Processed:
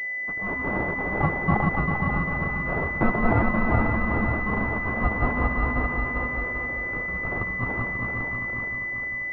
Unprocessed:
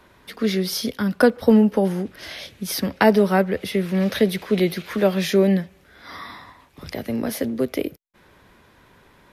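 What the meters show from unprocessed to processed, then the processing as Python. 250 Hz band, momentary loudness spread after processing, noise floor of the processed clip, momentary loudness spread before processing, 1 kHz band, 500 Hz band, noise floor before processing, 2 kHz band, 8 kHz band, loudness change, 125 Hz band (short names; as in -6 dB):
-7.5 dB, 5 LU, -30 dBFS, 19 LU, +1.5 dB, -10.5 dB, -55 dBFS, +7.0 dB, under -30 dB, -4.5 dB, +1.0 dB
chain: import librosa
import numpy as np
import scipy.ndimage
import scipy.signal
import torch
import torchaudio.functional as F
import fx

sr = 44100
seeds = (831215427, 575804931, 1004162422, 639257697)

p1 = fx.reverse_delay_fb(x, sr, ms=198, feedback_pct=71, wet_db=-0.5)
p2 = scipy.signal.sosfilt(scipy.signal.butter(4, 590.0, 'highpass', fs=sr, output='sos'), p1)
p3 = fx.fold_sine(p2, sr, drive_db=7, ceiling_db=-0.5)
p4 = fx.add_hum(p3, sr, base_hz=60, snr_db=31)
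p5 = p4 * np.sin(2.0 * np.pi * 640.0 * np.arange(len(p4)) / sr)
p6 = p5 + fx.echo_single(p5, sr, ms=538, db=-5.5, dry=0)
p7 = fx.pwm(p6, sr, carrier_hz=2000.0)
y = p7 * 10.0 ** (-6.0 / 20.0)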